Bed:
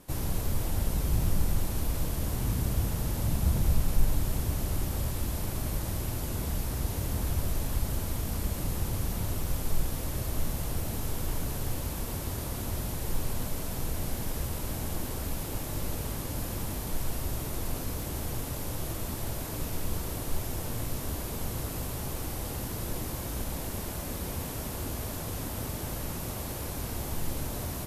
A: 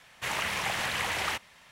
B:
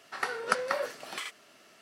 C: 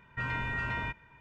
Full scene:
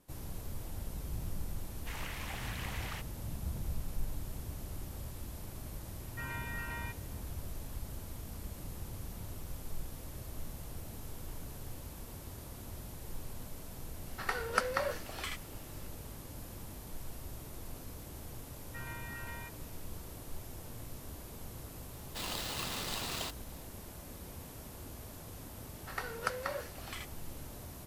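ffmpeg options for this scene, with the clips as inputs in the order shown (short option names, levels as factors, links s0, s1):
-filter_complex "[1:a]asplit=2[s0][s1];[3:a]asplit=2[s2][s3];[2:a]asplit=2[s4][s5];[0:a]volume=0.237[s6];[s1]aeval=exprs='val(0)*sgn(sin(2*PI*1900*n/s))':c=same[s7];[s0]atrim=end=1.71,asetpts=PTS-STARTPTS,volume=0.211,afade=t=in:d=0.004:c=hsin,afade=t=out:st=1.706:d=0.004:c=hsin,adelay=1640[s8];[s2]atrim=end=1.2,asetpts=PTS-STARTPTS,volume=0.398,afade=t=in:d=0.004:c=hsin,afade=t=out:st=1.196:d=0.004:c=hsin,adelay=6000[s9];[s4]atrim=end=1.81,asetpts=PTS-STARTPTS,volume=0.708,afade=t=in:d=0.004:c=hsin,afade=t=out:st=1.806:d=0.004:c=hsin,adelay=14060[s10];[s3]atrim=end=1.2,asetpts=PTS-STARTPTS,volume=0.251,afade=t=in:d=0.004:c=hsin,afade=t=out:st=1.196:d=0.004:c=hsin,adelay=18570[s11];[s7]atrim=end=1.71,asetpts=PTS-STARTPTS,volume=0.398,afade=t=in:d=0.004:c=hsin,afade=t=out:st=1.706:d=0.004:c=hsin,adelay=21930[s12];[s5]atrim=end=1.81,asetpts=PTS-STARTPTS,volume=0.422,afade=t=in:d=0.004:c=hsin,afade=t=out:st=1.806:d=0.004:c=hsin,adelay=25750[s13];[s6][s8][s9][s10][s11][s12][s13]amix=inputs=7:normalize=0"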